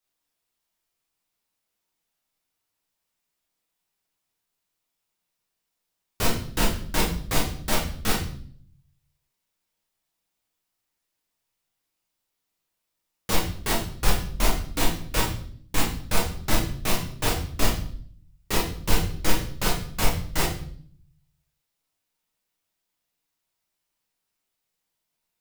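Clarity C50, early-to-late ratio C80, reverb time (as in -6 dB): 6.0 dB, 10.0 dB, 0.55 s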